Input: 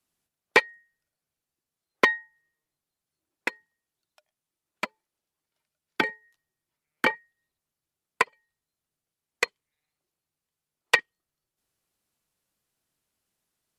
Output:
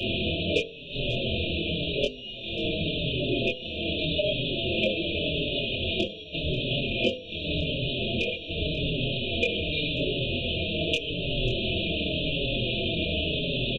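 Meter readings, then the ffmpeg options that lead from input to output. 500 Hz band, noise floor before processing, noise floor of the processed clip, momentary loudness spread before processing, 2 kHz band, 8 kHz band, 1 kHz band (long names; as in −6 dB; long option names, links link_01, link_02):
+8.5 dB, below −85 dBFS, −40 dBFS, 13 LU, −2.5 dB, can't be measured, below −10 dB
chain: -filter_complex "[0:a]aeval=exprs='val(0)+0.5*0.126*sgn(val(0))':channel_layout=same,aresample=8000,acrusher=bits=6:mix=0:aa=0.000001,aresample=44100,acontrast=28,asplit=2[link_01][link_02];[link_02]aecho=0:1:539:0.106[link_03];[link_01][link_03]amix=inputs=2:normalize=0,alimiter=limit=-7dB:level=0:latency=1:release=370,asplit=2[link_04][link_05];[link_05]adelay=24,volume=-3dB[link_06];[link_04][link_06]amix=inputs=2:normalize=0,bandreject=frequency=50.66:width_type=h:width=4,bandreject=frequency=101.32:width_type=h:width=4,bandreject=frequency=151.98:width_type=h:width=4,bandreject=frequency=202.64:width_type=h:width=4,bandreject=frequency=253.3:width_type=h:width=4,bandreject=frequency=303.96:width_type=h:width=4,bandreject=frequency=354.62:width_type=h:width=4,bandreject=frequency=405.28:width_type=h:width=4,bandreject=frequency=455.94:width_type=h:width=4,bandreject=frequency=506.6:width_type=h:width=4,bandreject=frequency=557.26:width_type=h:width=4,bandreject=frequency=607.92:width_type=h:width=4,bandreject=frequency=658.58:width_type=h:width=4,bandreject=frequency=709.24:width_type=h:width=4,bandreject=frequency=759.9:width_type=h:width=4,bandreject=frequency=810.56:width_type=h:width=4,bandreject=frequency=861.22:width_type=h:width=4,bandreject=frequency=911.88:width_type=h:width=4,bandreject=frequency=962.54:width_type=h:width=4,bandreject=frequency=1013.2:width_type=h:width=4,bandreject=frequency=1063.86:width_type=h:width=4,bandreject=frequency=1114.52:width_type=h:width=4,bandreject=frequency=1165.18:width_type=h:width=4,bandreject=frequency=1215.84:width_type=h:width=4,bandreject=frequency=1266.5:width_type=h:width=4,bandreject=frequency=1317.16:width_type=h:width=4,bandreject=frequency=1367.82:width_type=h:width=4,bandreject=frequency=1418.48:width_type=h:width=4,bandreject=frequency=1469.14:width_type=h:width=4,bandreject=frequency=1519.8:width_type=h:width=4,bandreject=frequency=1570.46:width_type=h:width=4,bandreject=frequency=1621.12:width_type=h:width=4,bandreject=frequency=1671.78:width_type=h:width=4,bandreject=frequency=1722.44:width_type=h:width=4,bandreject=frequency=1773.1:width_type=h:width=4,bandreject=frequency=1823.76:width_type=h:width=4,bandreject=frequency=1874.42:width_type=h:width=4,bandreject=frequency=1925.08:width_type=h:width=4,bandreject=frequency=1975.74:width_type=h:width=4,afftfilt=real='re*(1-between(b*sr/4096,690,2400))':imag='im*(1-between(b*sr/4096,690,2400))':win_size=4096:overlap=0.75,asplit=2[link_07][link_08];[link_08]adelay=5.2,afreqshift=-0.87[link_09];[link_07][link_09]amix=inputs=2:normalize=1"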